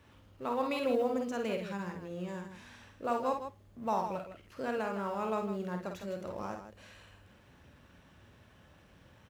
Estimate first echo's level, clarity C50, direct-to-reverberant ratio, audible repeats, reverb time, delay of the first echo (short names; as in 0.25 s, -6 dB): -5.5 dB, none, none, 2, none, 50 ms